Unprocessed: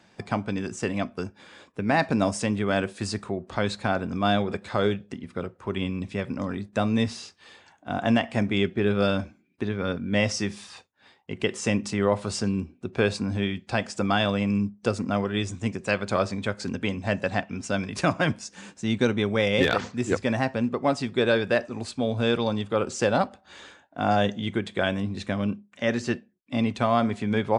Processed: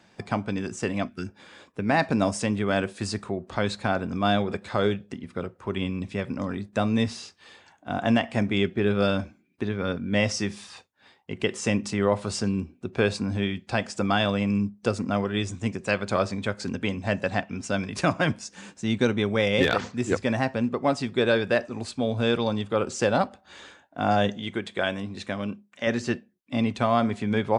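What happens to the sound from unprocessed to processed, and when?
1.08–1.28 spectral gain 370–1300 Hz -12 dB
24.37–25.87 low shelf 250 Hz -8 dB

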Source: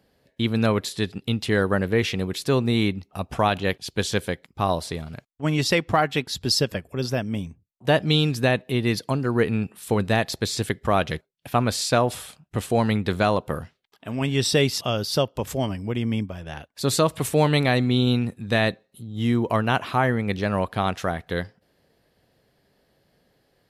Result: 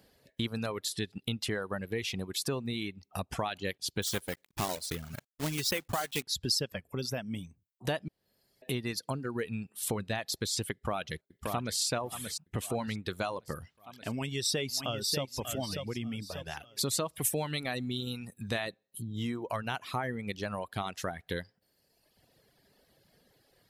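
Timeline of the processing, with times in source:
4.02–6.24 block floating point 3-bit
8.08–8.62 room tone
10.72–11.79 echo throw 0.58 s, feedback 50%, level -10 dB
14.09–15.24 echo throw 0.59 s, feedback 35%, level -8 dB
17.13–18.48 high shelf 10000 Hz +11 dB
whole clip: compressor 3:1, threshold -34 dBFS; reverb removal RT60 1.3 s; high shelf 3800 Hz +7.5 dB

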